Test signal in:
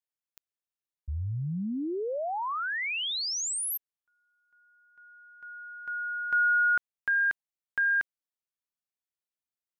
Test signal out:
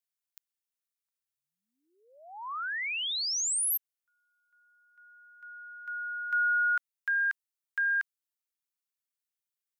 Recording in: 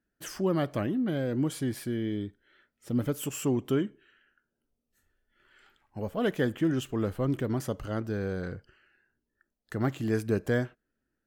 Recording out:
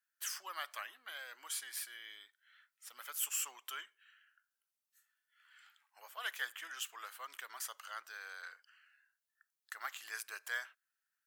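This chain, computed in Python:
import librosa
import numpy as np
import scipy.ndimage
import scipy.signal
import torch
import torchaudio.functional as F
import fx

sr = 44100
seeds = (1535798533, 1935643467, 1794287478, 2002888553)

y = scipy.signal.sosfilt(scipy.signal.butter(4, 1100.0, 'highpass', fs=sr, output='sos'), x)
y = fx.high_shelf(y, sr, hz=5800.0, db=7.0)
y = F.gain(torch.from_numpy(y), -2.5).numpy()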